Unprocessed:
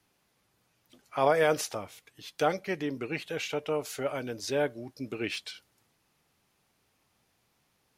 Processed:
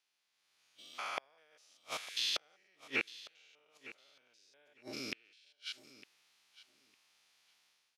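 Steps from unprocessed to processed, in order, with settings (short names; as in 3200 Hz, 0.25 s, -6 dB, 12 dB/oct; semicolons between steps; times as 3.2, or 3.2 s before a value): stepped spectrum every 0.2 s; spectral noise reduction 12 dB; AGC gain up to 12 dB; limiter -12 dBFS, peak gain reduction 8 dB; band-pass 3900 Hz, Q 0.85; flipped gate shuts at -28 dBFS, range -41 dB; on a send: feedback echo 0.906 s, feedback 16%, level -17 dB; on the sum: gain +7.5 dB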